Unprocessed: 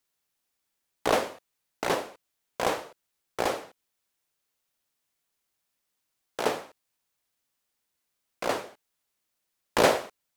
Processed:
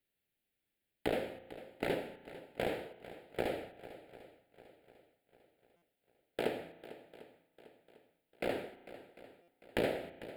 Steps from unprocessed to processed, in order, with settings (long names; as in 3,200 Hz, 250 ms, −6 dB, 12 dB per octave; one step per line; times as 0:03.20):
high-shelf EQ 2,100 Hz −8.5 dB
hum removal 84.39 Hz, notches 3
downward compressor 4 to 1, threshold −30 dBFS, peak gain reduction 12 dB
phaser with its sweep stopped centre 2,600 Hz, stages 4
feedback echo with a long and a short gap by turns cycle 748 ms, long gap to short 1.5 to 1, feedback 39%, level −16 dB
spring reverb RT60 1.5 s, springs 34 ms, chirp 45 ms, DRR 15 dB
buffer that repeats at 0:05.76/0:09.42, samples 256, times 9
level +2.5 dB